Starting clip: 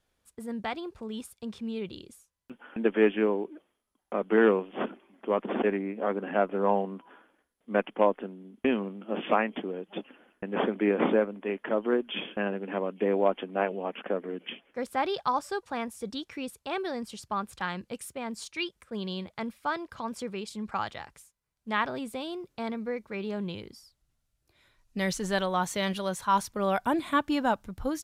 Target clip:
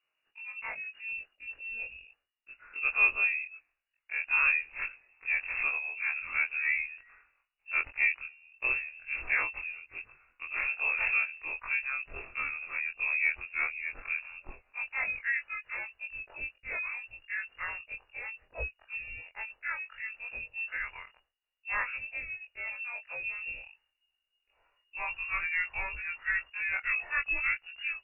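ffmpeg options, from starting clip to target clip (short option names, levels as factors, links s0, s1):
-af "afftfilt=real='re':imag='-im':win_size=2048:overlap=0.75,lowpass=f=2500:t=q:w=0.5098,lowpass=f=2500:t=q:w=0.6013,lowpass=f=2500:t=q:w=0.9,lowpass=f=2500:t=q:w=2.563,afreqshift=-2900,asubboost=boost=11.5:cutoff=54"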